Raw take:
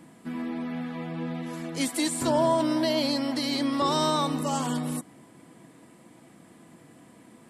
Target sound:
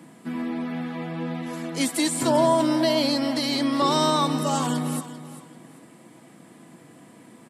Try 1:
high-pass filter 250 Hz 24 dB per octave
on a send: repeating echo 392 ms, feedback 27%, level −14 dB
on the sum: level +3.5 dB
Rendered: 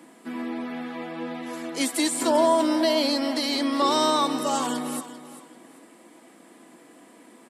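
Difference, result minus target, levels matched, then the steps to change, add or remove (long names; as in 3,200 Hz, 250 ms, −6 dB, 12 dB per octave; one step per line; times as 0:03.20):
125 Hz band −15.5 dB
change: high-pass filter 110 Hz 24 dB per octave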